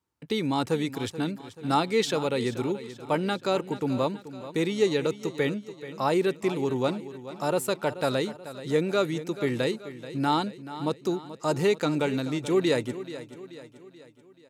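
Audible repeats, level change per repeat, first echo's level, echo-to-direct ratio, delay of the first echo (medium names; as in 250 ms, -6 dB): 4, -6.0 dB, -14.0 dB, -13.0 dB, 432 ms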